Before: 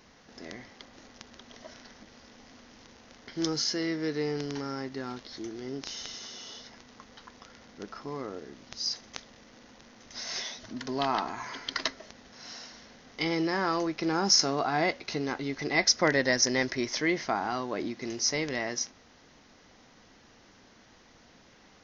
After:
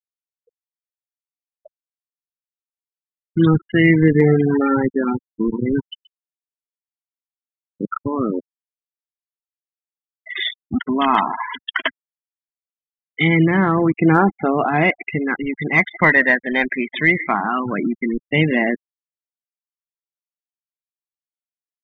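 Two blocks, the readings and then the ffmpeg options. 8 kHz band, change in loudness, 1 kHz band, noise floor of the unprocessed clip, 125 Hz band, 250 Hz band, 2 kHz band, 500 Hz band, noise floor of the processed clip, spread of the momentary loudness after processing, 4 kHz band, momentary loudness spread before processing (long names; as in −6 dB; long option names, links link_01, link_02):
can't be measured, +11.5 dB, +11.0 dB, −58 dBFS, +19.5 dB, +15.0 dB, +14.0 dB, +10.5 dB, below −85 dBFS, 11 LU, −0.5 dB, 21 LU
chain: -filter_complex "[0:a]equalizer=frequency=2500:width=0.69:gain=5,afftfilt=real='re*between(b*sr/4096,140,3700)':imag='im*between(b*sr/4096,140,3700)':win_size=4096:overlap=0.75,acrossover=split=200|2600[link_01][link_02][link_03];[link_03]aeval=exprs='0.0282*(abs(mod(val(0)/0.0282+3,4)-2)-1)':channel_layout=same[link_04];[link_01][link_02][link_04]amix=inputs=3:normalize=0,asplit=2[link_05][link_06];[link_06]adelay=163.3,volume=-19dB,highshelf=frequency=4000:gain=-3.67[link_07];[link_05][link_07]amix=inputs=2:normalize=0,aresample=16000,acrusher=bits=5:mix=0:aa=0.000001,aresample=44100,afftfilt=real='re*gte(hypot(re,im),0.0398)':imag='im*gte(hypot(re,im),0.0398)':win_size=1024:overlap=0.75,acontrast=34,aphaser=in_gain=1:out_gain=1:delay=1.3:decay=0.38:speed=0.21:type=triangular,dynaudnorm=framelen=280:gausssize=9:maxgain=12.5dB,asubboost=boost=5:cutoff=200,volume=-1dB"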